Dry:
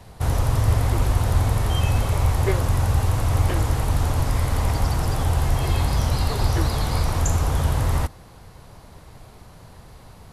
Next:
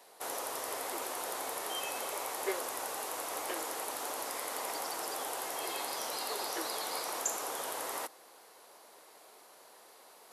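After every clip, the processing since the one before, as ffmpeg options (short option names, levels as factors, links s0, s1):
-af "highpass=f=370:w=0.5412,highpass=f=370:w=1.3066,highshelf=f=7400:g=9.5,areverse,acompressor=mode=upward:threshold=0.00631:ratio=2.5,areverse,volume=0.376"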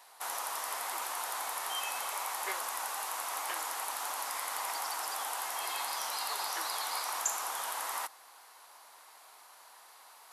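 -af "lowshelf=f=650:t=q:w=1.5:g=-11.5,volume=1.19"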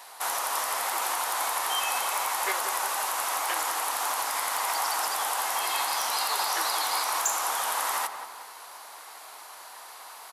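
-filter_complex "[0:a]asplit=2[s0][s1];[s1]alimiter=level_in=2:limit=0.0631:level=0:latency=1:release=222,volume=0.501,volume=1.26[s2];[s0][s2]amix=inputs=2:normalize=0,asoftclip=type=hard:threshold=0.0794,asplit=2[s3][s4];[s4]adelay=183,lowpass=f=1900:p=1,volume=0.398,asplit=2[s5][s6];[s6]adelay=183,lowpass=f=1900:p=1,volume=0.52,asplit=2[s7][s8];[s8]adelay=183,lowpass=f=1900:p=1,volume=0.52,asplit=2[s9][s10];[s10]adelay=183,lowpass=f=1900:p=1,volume=0.52,asplit=2[s11][s12];[s12]adelay=183,lowpass=f=1900:p=1,volume=0.52,asplit=2[s13][s14];[s14]adelay=183,lowpass=f=1900:p=1,volume=0.52[s15];[s3][s5][s7][s9][s11][s13][s15]amix=inputs=7:normalize=0,volume=1.5"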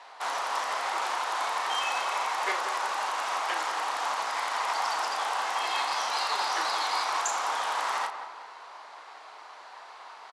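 -filter_complex "[0:a]adynamicsmooth=sensitivity=5:basefreq=3900,highpass=250,lowpass=7300,asplit=2[s0][s1];[s1]adelay=35,volume=0.376[s2];[s0][s2]amix=inputs=2:normalize=0"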